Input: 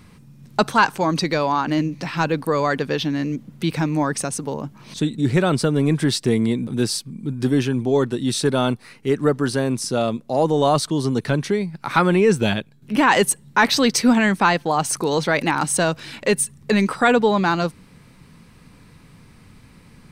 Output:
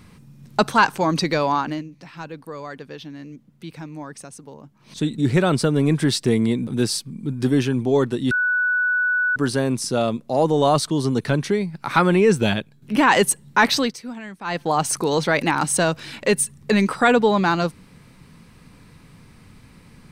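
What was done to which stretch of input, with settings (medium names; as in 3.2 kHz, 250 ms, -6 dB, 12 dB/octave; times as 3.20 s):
1.55–5.09 s: dip -14 dB, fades 0.29 s
8.31–9.36 s: bleep 1.48 kHz -17 dBFS
13.64–14.76 s: dip -18 dB, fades 0.32 s equal-power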